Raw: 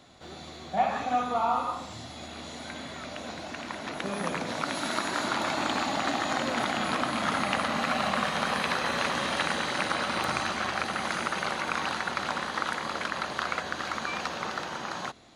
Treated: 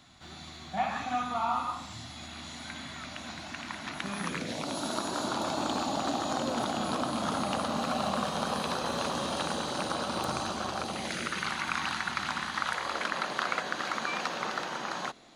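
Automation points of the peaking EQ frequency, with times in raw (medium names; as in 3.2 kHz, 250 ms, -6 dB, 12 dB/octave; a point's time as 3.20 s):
peaking EQ -14.5 dB 0.89 oct
4.19 s 480 Hz
4.74 s 2 kHz
10.83 s 2 kHz
11.53 s 500 Hz
12.57 s 500 Hz
13.11 s 80 Hz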